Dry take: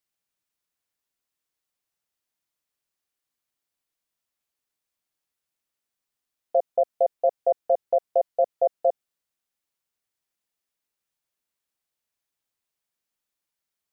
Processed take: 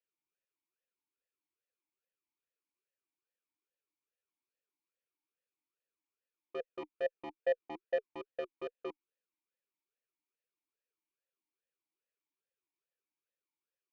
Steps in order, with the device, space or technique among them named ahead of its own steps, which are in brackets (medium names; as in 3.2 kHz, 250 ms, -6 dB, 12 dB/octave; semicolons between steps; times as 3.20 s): talk box (valve stage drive 28 dB, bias 0.5; talking filter e-u 2.4 Hz); trim +6.5 dB